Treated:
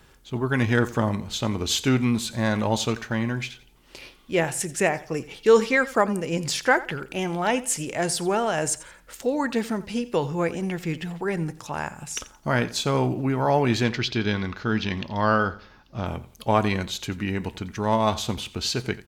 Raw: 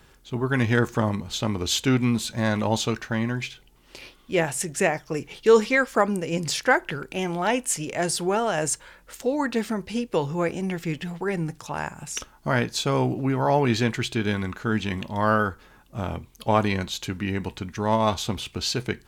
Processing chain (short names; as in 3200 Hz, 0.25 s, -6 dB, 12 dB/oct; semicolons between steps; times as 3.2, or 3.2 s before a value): 13.84–16.06 resonant high shelf 6600 Hz -10 dB, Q 3; on a send: feedback echo 87 ms, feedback 30%, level -18 dB